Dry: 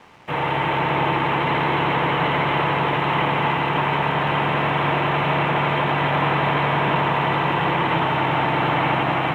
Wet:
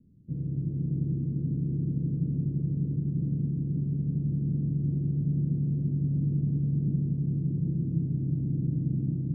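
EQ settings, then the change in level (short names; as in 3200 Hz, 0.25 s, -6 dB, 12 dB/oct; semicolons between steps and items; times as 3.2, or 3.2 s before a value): inverse Chebyshev low-pass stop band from 790 Hz, stop band 60 dB; 0.0 dB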